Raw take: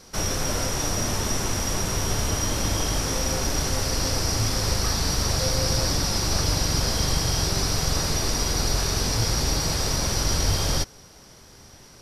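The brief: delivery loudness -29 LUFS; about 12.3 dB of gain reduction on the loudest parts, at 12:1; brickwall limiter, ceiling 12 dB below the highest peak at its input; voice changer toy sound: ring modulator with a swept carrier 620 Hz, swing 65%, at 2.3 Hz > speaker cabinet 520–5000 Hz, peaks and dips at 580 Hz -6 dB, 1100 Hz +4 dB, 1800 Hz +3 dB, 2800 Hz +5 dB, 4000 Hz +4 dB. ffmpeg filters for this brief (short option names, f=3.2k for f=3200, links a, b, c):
-af "acompressor=threshold=-31dB:ratio=12,alimiter=level_in=9.5dB:limit=-24dB:level=0:latency=1,volume=-9.5dB,aeval=exprs='val(0)*sin(2*PI*620*n/s+620*0.65/2.3*sin(2*PI*2.3*n/s))':c=same,highpass=520,equalizer=f=580:t=q:w=4:g=-6,equalizer=f=1.1k:t=q:w=4:g=4,equalizer=f=1.8k:t=q:w=4:g=3,equalizer=f=2.8k:t=q:w=4:g=5,equalizer=f=4k:t=q:w=4:g=4,lowpass=f=5k:w=0.5412,lowpass=f=5k:w=1.3066,volume=16.5dB"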